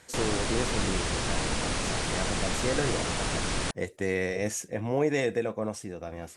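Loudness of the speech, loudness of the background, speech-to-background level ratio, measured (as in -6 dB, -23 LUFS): -32.5 LUFS, -30.0 LUFS, -2.5 dB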